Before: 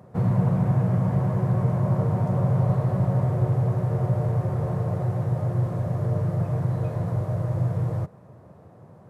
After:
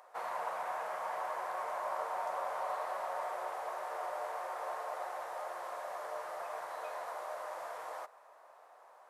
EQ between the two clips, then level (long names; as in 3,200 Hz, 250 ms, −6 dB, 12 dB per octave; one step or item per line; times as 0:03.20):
high-pass filter 760 Hz 24 dB per octave
+1.5 dB